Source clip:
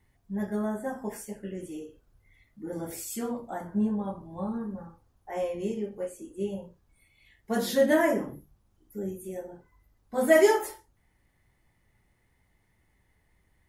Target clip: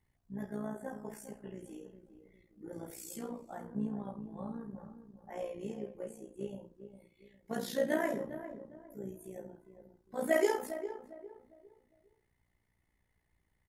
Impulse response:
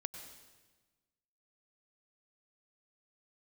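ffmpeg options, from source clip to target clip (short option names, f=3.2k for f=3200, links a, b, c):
-filter_complex "[0:a]asplit=2[a][b];[b]adelay=405,lowpass=f=960:p=1,volume=-10dB,asplit=2[c][d];[d]adelay=405,lowpass=f=960:p=1,volume=0.36,asplit=2[e][f];[f]adelay=405,lowpass=f=960:p=1,volume=0.36,asplit=2[g][h];[h]adelay=405,lowpass=f=960:p=1,volume=0.36[i];[a][c][e][g][i]amix=inputs=5:normalize=0,tremolo=f=59:d=0.667,volume=-6.5dB"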